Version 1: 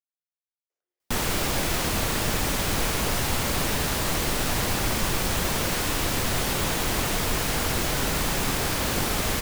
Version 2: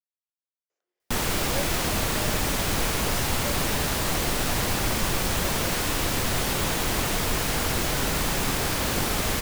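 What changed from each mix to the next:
speech +6.5 dB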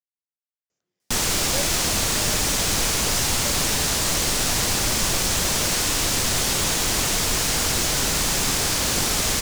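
speech: remove high-pass 360 Hz 24 dB/octave; master: add peaking EQ 6.5 kHz +10 dB 1.8 oct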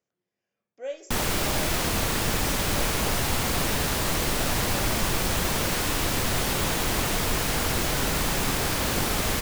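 speech: entry -0.70 s; master: add peaking EQ 6.5 kHz -10 dB 1.8 oct

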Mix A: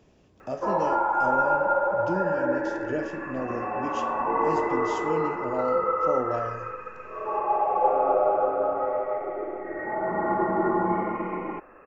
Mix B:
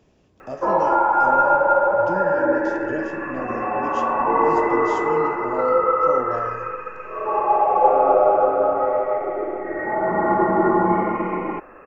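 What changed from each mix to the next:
background +6.5 dB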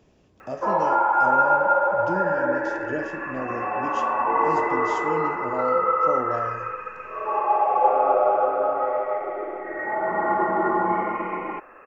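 background: add bass shelf 450 Hz -11.5 dB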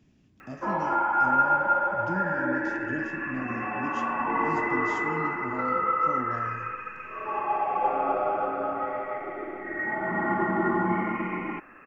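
speech -5.5 dB; master: add graphic EQ 125/250/500/1000/2000 Hz +5/+8/-11/-5/+3 dB

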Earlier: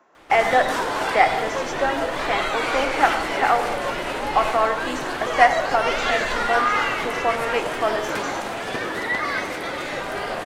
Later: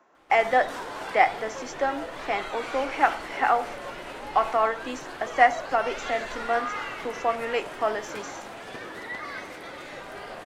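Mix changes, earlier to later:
background -11.5 dB; reverb: off

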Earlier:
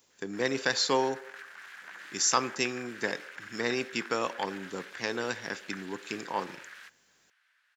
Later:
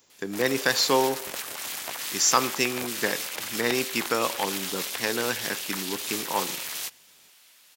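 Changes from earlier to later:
speech +4.5 dB; background: remove band-pass filter 1.6 kHz, Q 4.9

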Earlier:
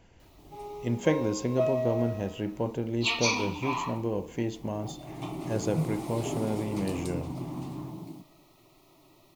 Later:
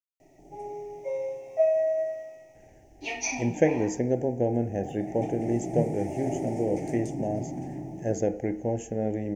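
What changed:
speech: entry +2.55 s; master: add FFT filter 160 Hz 0 dB, 800 Hz +6 dB, 1.1 kHz -28 dB, 1.8 kHz +5 dB, 4 kHz -20 dB, 6 kHz +2 dB, 12 kHz -13 dB

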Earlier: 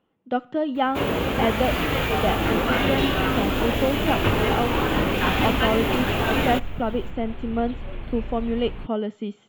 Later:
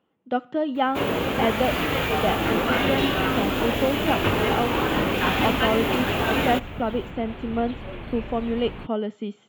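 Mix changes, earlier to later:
second sound +3.5 dB; master: add high-pass 110 Hz 6 dB/octave

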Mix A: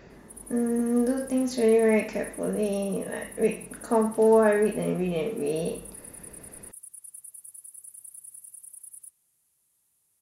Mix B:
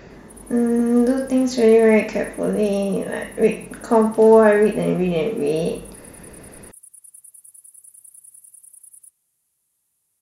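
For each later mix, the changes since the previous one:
speech +7.5 dB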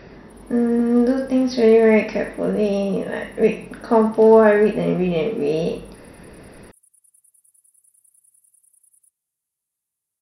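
speech: add brick-wall FIR low-pass 5.9 kHz; background -11.5 dB

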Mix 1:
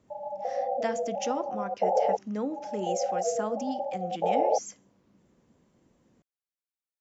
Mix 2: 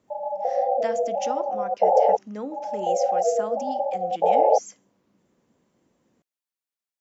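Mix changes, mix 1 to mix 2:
background +7.5 dB; master: add bass shelf 130 Hz -10.5 dB

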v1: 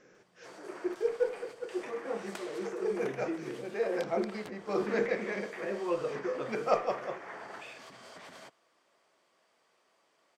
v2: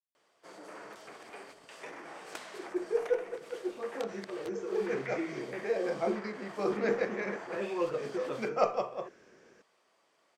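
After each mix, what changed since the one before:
speech: entry +1.90 s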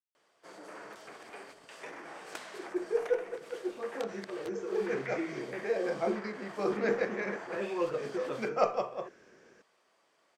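master: add peaking EQ 1.6 kHz +2 dB 0.3 oct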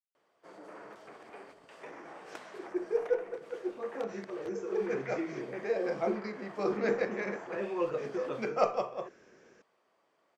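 background: add treble shelf 2.6 kHz -11.5 dB; master: add peaking EQ 1.6 kHz -2 dB 0.3 oct

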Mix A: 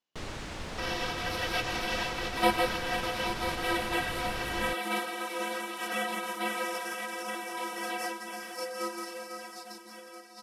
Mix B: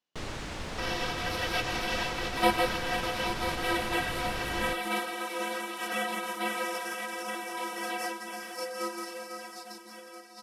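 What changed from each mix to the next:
reverb: on, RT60 0.70 s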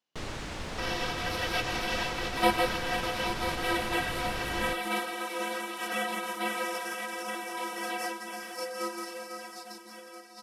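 speech: send on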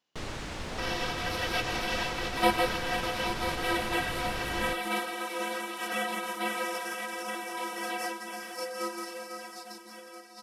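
speech +6.0 dB

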